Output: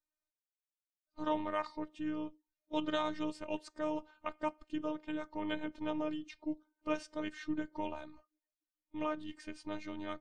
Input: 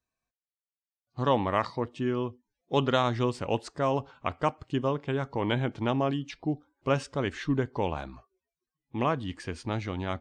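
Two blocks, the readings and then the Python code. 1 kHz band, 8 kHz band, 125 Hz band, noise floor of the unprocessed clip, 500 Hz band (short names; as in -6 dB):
-10.0 dB, -9.5 dB, -23.5 dB, under -85 dBFS, -10.5 dB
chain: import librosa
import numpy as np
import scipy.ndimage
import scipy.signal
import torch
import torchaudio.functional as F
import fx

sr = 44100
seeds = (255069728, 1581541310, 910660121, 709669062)

y = fx.spec_quant(x, sr, step_db=15)
y = fx.robotise(y, sr, hz=306.0)
y = y * librosa.db_to_amplitude(-6.5)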